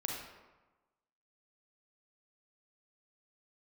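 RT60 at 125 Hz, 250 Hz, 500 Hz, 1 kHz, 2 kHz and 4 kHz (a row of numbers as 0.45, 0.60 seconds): 1.2, 1.2, 1.1, 1.2, 0.95, 0.70 seconds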